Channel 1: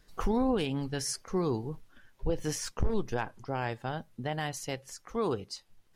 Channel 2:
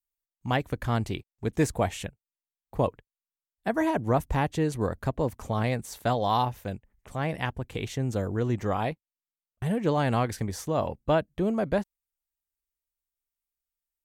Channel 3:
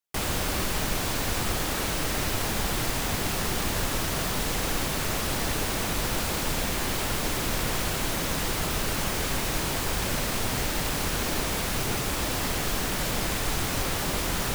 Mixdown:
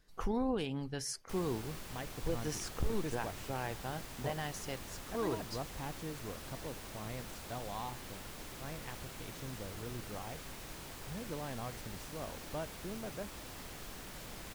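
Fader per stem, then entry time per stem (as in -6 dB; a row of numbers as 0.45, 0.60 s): -6.0, -17.5, -19.5 dB; 0.00, 1.45, 1.15 s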